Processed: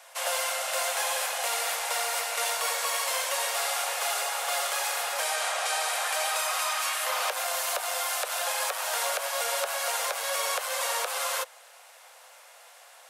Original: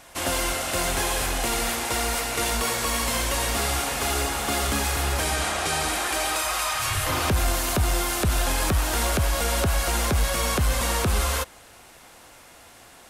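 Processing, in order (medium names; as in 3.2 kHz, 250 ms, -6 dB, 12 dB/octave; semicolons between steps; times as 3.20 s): steep high-pass 490 Hz 72 dB/octave; trim -2.5 dB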